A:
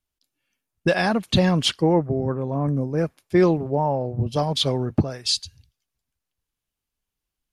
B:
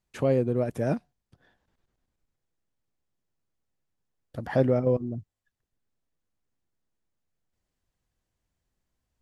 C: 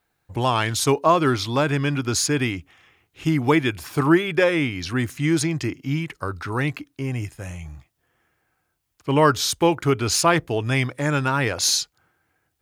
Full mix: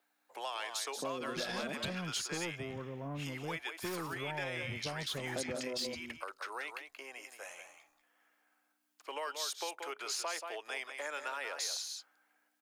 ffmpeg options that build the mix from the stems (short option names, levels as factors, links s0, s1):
-filter_complex "[0:a]asoftclip=type=tanh:threshold=0.15,adelay=500,volume=0.266[s0];[1:a]highpass=f=200:w=0.5412,highpass=f=200:w=1.3066,afwtdn=0.0112,adelay=800,volume=0.473,asplit=2[s1][s2];[s2]volume=0.447[s3];[2:a]aeval=exprs='val(0)+0.00316*(sin(2*PI*60*n/s)+sin(2*PI*2*60*n/s)/2+sin(2*PI*3*60*n/s)/3+sin(2*PI*4*60*n/s)/4+sin(2*PI*5*60*n/s)/5)':c=same,acompressor=threshold=0.0251:ratio=2,highpass=f=540:w=0.5412,highpass=f=540:w=1.3066,volume=0.596,asplit=2[s4][s5];[s5]volume=0.355[s6];[s3][s6]amix=inputs=2:normalize=0,aecho=0:1:180:1[s7];[s0][s1][s4][s7]amix=inputs=4:normalize=0,acrossover=split=110|770|1600|6300[s8][s9][s10][s11][s12];[s8]acompressor=threshold=0.00126:ratio=4[s13];[s9]acompressor=threshold=0.00891:ratio=4[s14];[s10]acompressor=threshold=0.00398:ratio=4[s15];[s11]acompressor=threshold=0.0126:ratio=4[s16];[s12]acompressor=threshold=0.00631:ratio=4[s17];[s13][s14][s15][s16][s17]amix=inputs=5:normalize=0"